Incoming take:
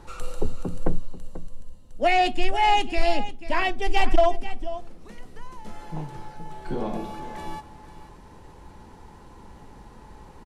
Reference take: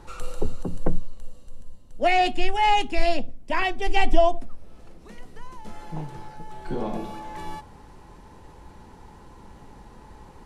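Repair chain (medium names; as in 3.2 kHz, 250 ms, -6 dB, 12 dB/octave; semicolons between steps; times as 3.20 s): clip repair -9.5 dBFS; inverse comb 489 ms -14 dB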